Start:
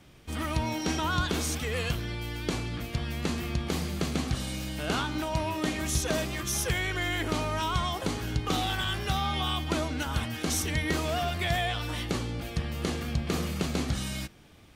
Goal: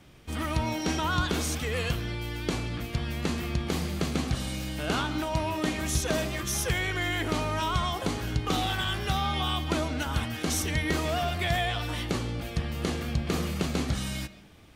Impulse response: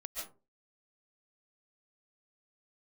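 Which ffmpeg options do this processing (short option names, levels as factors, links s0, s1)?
-filter_complex "[0:a]asplit=2[s0][s1];[1:a]atrim=start_sample=2205,lowpass=4500[s2];[s1][s2]afir=irnorm=-1:irlink=0,volume=0.237[s3];[s0][s3]amix=inputs=2:normalize=0"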